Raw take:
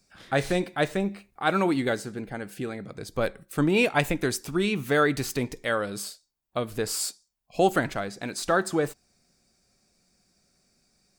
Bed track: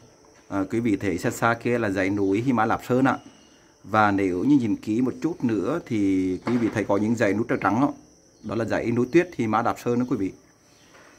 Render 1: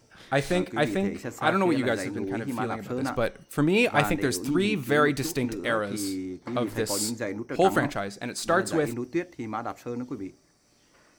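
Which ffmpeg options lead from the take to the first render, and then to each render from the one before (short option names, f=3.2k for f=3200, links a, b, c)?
-filter_complex "[1:a]volume=-10dB[a];[0:a][a]amix=inputs=2:normalize=0"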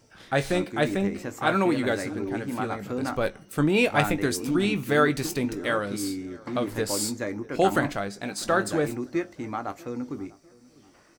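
-filter_complex "[0:a]asplit=2[a][b];[b]adelay=20,volume=-12dB[c];[a][c]amix=inputs=2:normalize=0,asplit=2[d][e];[e]adelay=648,lowpass=f=1.7k:p=1,volume=-23dB,asplit=2[f][g];[g]adelay=648,lowpass=f=1.7k:p=1,volume=0.4,asplit=2[h][i];[i]adelay=648,lowpass=f=1.7k:p=1,volume=0.4[j];[d][f][h][j]amix=inputs=4:normalize=0"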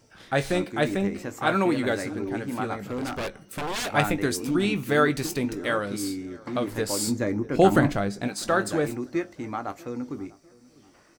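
-filter_complex "[0:a]asettb=1/sr,asplit=3[a][b][c];[a]atrim=end=2.764[d];[b]atrim=start=2.76:end=3.91,asetpts=PTS-STARTPTS,afade=t=in:d=0.004:c=qsin,afade=t=out:st=1.146:d=0.004:c=qsin,aeval=exprs='0.0596*(abs(mod(val(0)/0.0596+3,4)-2)-1)':c=same[e];[c]atrim=start=3.906[f];[d][e]acrossfade=d=0.004:c1=hsin:c2=qsin[g];[g][f]acrossfade=d=0.004:c1=qsin:c2=hsin,asettb=1/sr,asplit=3[h][i][j];[h]atrim=end=7.074[k];[i]atrim=start=7.07:end=8.28,asetpts=PTS-STARTPTS,afade=t=in:d=0.004:c=qsin,afade=t=out:st=1.206:d=0.004:c=qsin,lowshelf=f=400:g=9[l];[j]atrim=start=8.276[m];[k][l]acrossfade=d=0.004:c1=hsin:c2=qsin[n];[n][m]acrossfade=d=0.004:c1=qsin:c2=hsin"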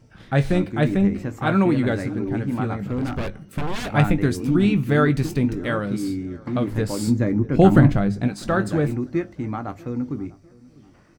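-af "bass=f=250:g=13,treble=f=4k:g=-7,bandreject=f=50:t=h:w=6,bandreject=f=100:t=h:w=6"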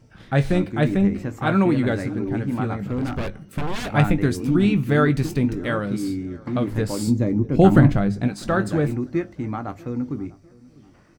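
-filter_complex "[0:a]asettb=1/sr,asplit=3[a][b][c];[a]atrim=end=7.034[d];[b]atrim=start=7.03:end=7.64,asetpts=PTS-STARTPTS,afade=t=in:d=0.004:c=qsin,afade=t=out:st=0.606:d=0.004:c=qsin,equalizer=f=1.6k:w=1.5:g=-8.5[e];[c]atrim=start=7.636[f];[d][e]acrossfade=d=0.004:c1=hsin:c2=qsin[g];[g][f]acrossfade=d=0.004:c1=qsin:c2=hsin"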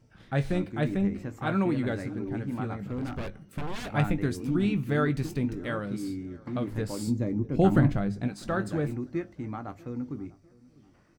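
-af "volume=-8dB"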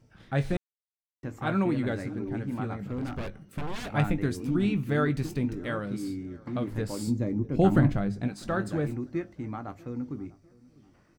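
-filter_complex "[0:a]asplit=3[a][b][c];[a]atrim=end=0.57,asetpts=PTS-STARTPTS,afade=t=out:st=0.566:d=0.004:c=hsin[d];[b]atrim=start=0.57:end=1.23,asetpts=PTS-STARTPTS,volume=0[e];[c]atrim=start=1.23,asetpts=PTS-STARTPTS,afade=t=in:d=0.004:c=hsin[f];[d][e][f]concat=n=3:v=0:a=1"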